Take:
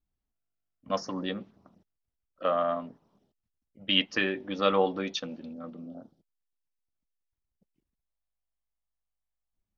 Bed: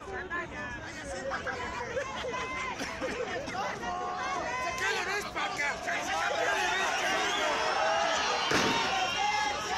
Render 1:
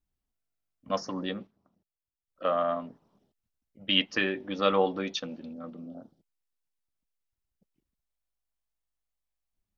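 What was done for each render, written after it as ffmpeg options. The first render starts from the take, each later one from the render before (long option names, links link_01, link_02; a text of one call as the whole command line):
ffmpeg -i in.wav -filter_complex "[0:a]asplit=3[link_01][link_02][link_03];[link_01]atrim=end=1.47,asetpts=PTS-STARTPTS,afade=type=out:start_time=1.07:duration=0.4:curve=log:silence=0.266073[link_04];[link_02]atrim=start=1.47:end=2.28,asetpts=PTS-STARTPTS,volume=-11.5dB[link_05];[link_03]atrim=start=2.28,asetpts=PTS-STARTPTS,afade=type=in:duration=0.4:curve=log:silence=0.266073[link_06];[link_04][link_05][link_06]concat=n=3:v=0:a=1" out.wav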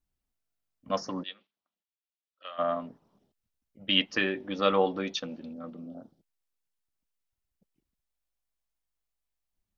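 ffmpeg -i in.wav -filter_complex "[0:a]asplit=3[link_01][link_02][link_03];[link_01]afade=type=out:start_time=1.22:duration=0.02[link_04];[link_02]bandpass=frequency=3200:width_type=q:width=1.9,afade=type=in:start_time=1.22:duration=0.02,afade=type=out:start_time=2.58:duration=0.02[link_05];[link_03]afade=type=in:start_time=2.58:duration=0.02[link_06];[link_04][link_05][link_06]amix=inputs=3:normalize=0" out.wav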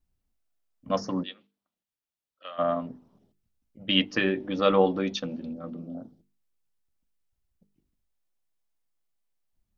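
ffmpeg -i in.wav -af "lowshelf=frequency=430:gain=9,bandreject=frequency=50:width_type=h:width=6,bandreject=frequency=100:width_type=h:width=6,bandreject=frequency=150:width_type=h:width=6,bandreject=frequency=200:width_type=h:width=6,bandreject=frequency=250:width_type=h:width=6,bandreject=frequency=300:width_type=h:width=6,bandreject=frequency=350:width_type=h:width=6,bandreject=frequency=400:width_type=h:width=6,bandreject=frequency=450:width_type=h:width=6" out.wav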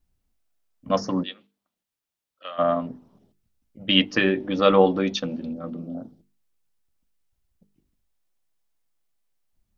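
ffmpeg -i in.wav -af "volume=4.5dB" out.wav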